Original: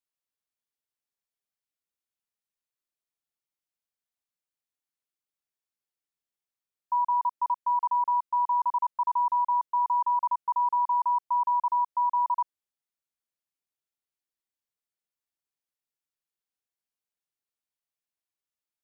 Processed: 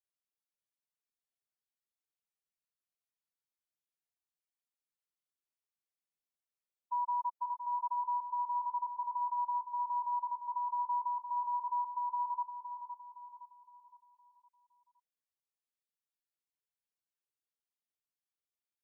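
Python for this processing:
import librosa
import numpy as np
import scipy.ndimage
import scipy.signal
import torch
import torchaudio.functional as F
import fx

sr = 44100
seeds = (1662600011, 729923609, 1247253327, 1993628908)

p1 = fx.spec_expand(x, sr, power=2.1)
p2 = p1 + fx.echo_feedback(p1, sr, ms=514, feedback_pct=42, wet_db=-8.5, dry=0)
y = F.gain(torch.from_numpy(p2), -8.0).numpy()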